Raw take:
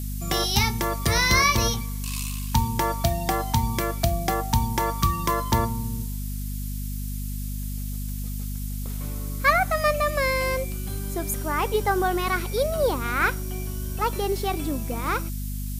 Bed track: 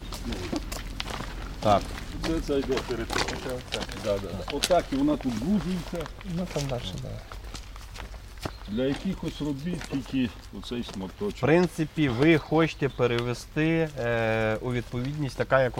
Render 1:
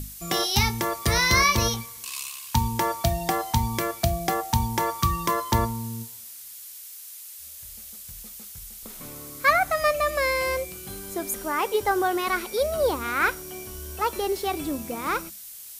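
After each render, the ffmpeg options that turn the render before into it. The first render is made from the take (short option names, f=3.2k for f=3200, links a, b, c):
-af "bandreject=f=50:t=h:w=6,bandreject=f=100:t=h:w=6,bandreject=f=150:t=h:w=6,bandreject=f=200:t=h:w=6,bandreject=f=250:t=h:w=6"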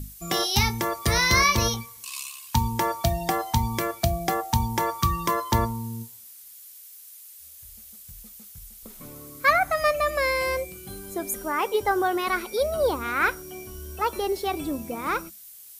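-af "afftdn=nr=7:nf=-42"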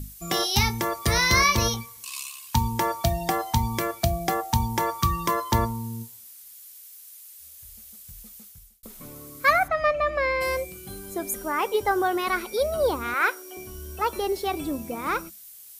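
-filter_complex "[0:a]asplit=3[a][b][c];[a]afade=t=out:st=9.67:d=0.02[d];[b]lowpass=3k,afade=t=in:st=9.67:d=0.02,afade=t=out:st=10.4:d=0.02[e];[c]afade=t=in:st=10.4:d=0.02[f];[d][e][f]amix=inputs=3:normalize=0,asettb=1/sr,asplit=3[g][h][i];[g]atrim=end=13.144[j];[h]atrim=start=13.14:end=13.57,asetpts=PTS-STARTPTS,afade=t=in:d=0.004:c=qsin,afade=t=out:st=0.426:d=0.004:c=qsin,highpass=f=360:w=0.5412,highpass=f=360:w=1.3066[k];[i]atrim=start=13.566[l];[j][k]acrossfade=d=0.004:c1=hsin:c2=qsin[m];[m][l]acrossfade=d=0.004:c1=qsin:c2=hsin,asplit=2[n][o];[n]atrim=end=8.83,asetpts=PTS-STARTPTS,afade=t=out:st=8.4:d=0.43[p];[o]atrim=start=8.83,asetpts=PTS-STARTPTS,afade=t=in:d=0.004:c=hsin[q];[p][q]concat=n=2:v=0:a=1"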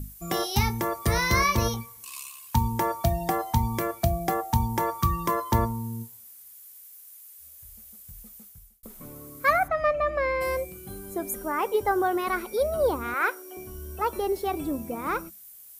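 -af "equalizer=f=4.2k:w=0.55:g=-8"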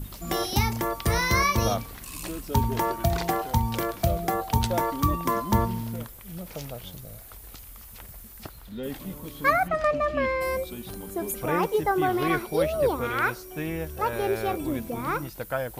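-filter_complex "[1:a]volume=-7.5dB[a];[0:a][a]amix=inputs=2:normalize=0"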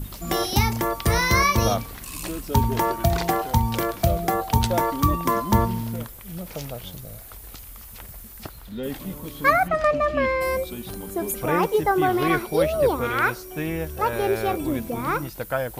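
-af "volume=3.5dB"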